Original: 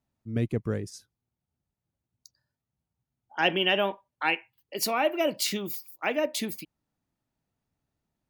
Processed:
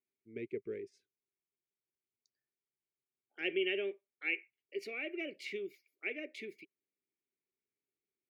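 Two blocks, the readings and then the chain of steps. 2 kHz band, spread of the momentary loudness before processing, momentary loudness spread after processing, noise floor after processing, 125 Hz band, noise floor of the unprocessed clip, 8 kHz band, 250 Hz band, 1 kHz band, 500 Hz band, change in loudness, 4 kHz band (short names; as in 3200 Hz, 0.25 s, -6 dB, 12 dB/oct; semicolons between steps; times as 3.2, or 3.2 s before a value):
-9.0 dB, 11 LU, 14 LU, under -85 dBFS, under -25 dB, under -85 dBFS, under -25 dB, -12.0 dB, -29.0 dB, -10.0 dB, -11.5 dB, -15.0 dB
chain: double band-pass 940 Hz, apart 2.5 oct; gain -1.5 dB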